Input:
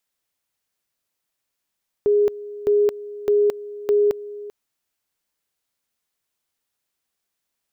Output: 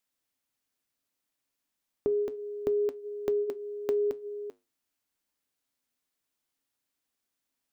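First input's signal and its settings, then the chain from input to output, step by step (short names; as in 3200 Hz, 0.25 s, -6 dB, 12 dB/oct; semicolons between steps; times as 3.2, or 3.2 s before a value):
two-level tone 413 Hz -13.5 dBFS, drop 17.5 dB, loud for 0.22 s, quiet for 0.39 s, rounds 4
bell 270 Hz +10.5 dB 0.28 oct; compressor 5:1, threshold -22 dBFS; flange 0.31 Hz, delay 5.3 ms, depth 5.3 ms, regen -79%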